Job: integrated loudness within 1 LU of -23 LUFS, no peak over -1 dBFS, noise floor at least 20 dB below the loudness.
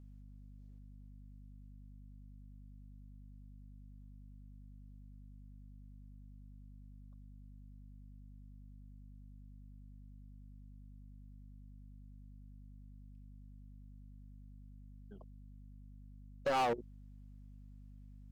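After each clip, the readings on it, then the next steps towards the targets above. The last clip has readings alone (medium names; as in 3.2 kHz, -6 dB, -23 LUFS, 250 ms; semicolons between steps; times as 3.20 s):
clipped samples 0.3%; clipping level -29.0 dBFS; hum 50 Hz; highest harmonic 250 Hz; hum level -52 dBFS; loudness -49.0 LUFS; peak level -29.0 dBFS; loudness target -23.0 LUFS
-> clip repair -29 dBFS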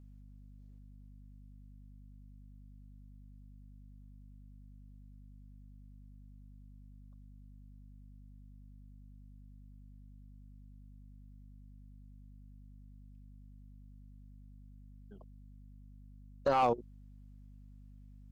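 clipped samples 0.0%; hum 50 Hz; highest harmonic 250 Hz; hum level -52 dBFS
-> de-hum 50 Hz, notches 5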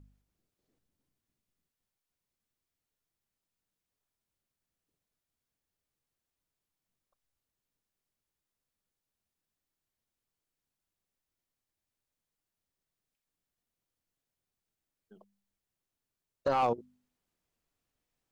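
hum not found; loudness -31.5 LUFS; peak level -19.5 dBFS; loudness target -23.0 LUFS
-> trim +8.5 dB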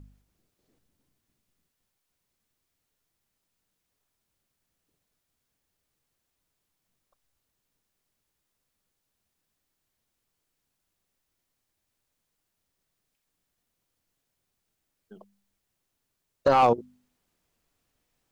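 loudness -23.0 LUFS; peak level -11.0 dBFS; noise floor -81 dBFS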